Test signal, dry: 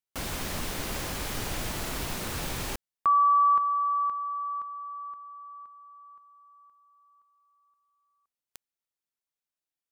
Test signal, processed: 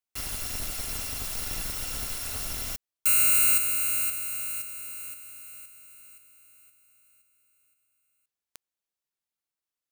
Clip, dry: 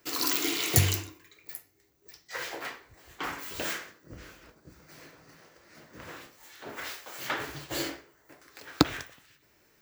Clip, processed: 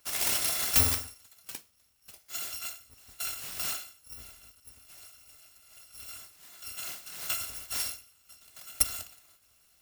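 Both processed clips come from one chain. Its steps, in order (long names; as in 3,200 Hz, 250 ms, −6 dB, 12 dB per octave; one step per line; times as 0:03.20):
samples in bit-reversed order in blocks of 256 samples
gain into a clipping stage and back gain 15 dB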